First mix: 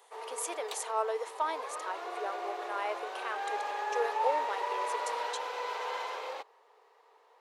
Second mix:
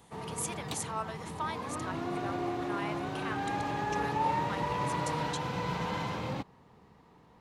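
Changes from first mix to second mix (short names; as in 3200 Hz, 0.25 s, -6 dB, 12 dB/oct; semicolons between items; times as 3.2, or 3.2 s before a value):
speech: add HPF 1100 Hz; master: remove elliptic high-pass 430 Hz, stop band 50 dB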